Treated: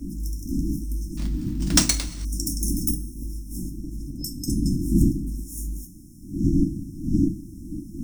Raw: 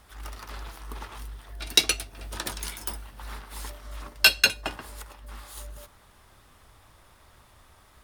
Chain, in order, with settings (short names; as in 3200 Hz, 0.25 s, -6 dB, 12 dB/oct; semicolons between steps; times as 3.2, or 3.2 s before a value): wind noise 490 Hz -32 dBFS; FFT band-reject 350–5200 Hz; 2.94–4.48 compressor 6:1, threshold -38 dBFS, peak gain reduction 16.5 dB; two-slope reverb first 0.23 s, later 1.9 s, from -20 dB, DRR 3 dB; 1.17–2.25 sample-rate reducer 14000 Hz, jitter 0%; gain +6 dB